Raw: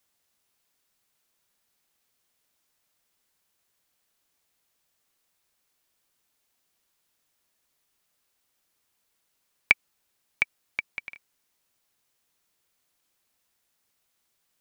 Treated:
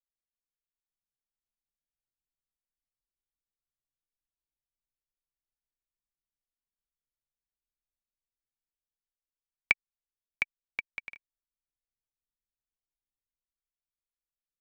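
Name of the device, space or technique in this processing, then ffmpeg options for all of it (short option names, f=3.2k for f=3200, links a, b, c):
voice memo with heavy noise removal: -af "anlmdn=0.0001,dynaudnorm=f=290:g=9:m=6dB,volume=-5.5dB"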